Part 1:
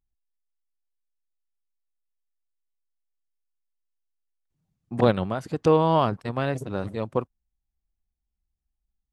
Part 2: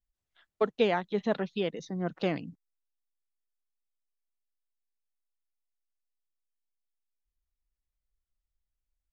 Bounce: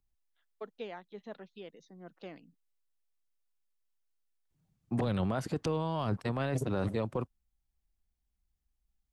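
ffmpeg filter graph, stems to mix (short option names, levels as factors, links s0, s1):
-filter_complex "[0:a]acrossover=split=200|3000[s0][s1][s2];[s1]acompressor=threshold=0.0794:ratio=6[s3];[s0][s3][s2]amix=inputs=3:normalize=0,volume=1.12[s4];[1:a]highpass=180,volume=0.158[s5];[s4][s5]amix=inputs=2:normalize=0,alimiter=limit=0.075:level=0:latency=1:release=16"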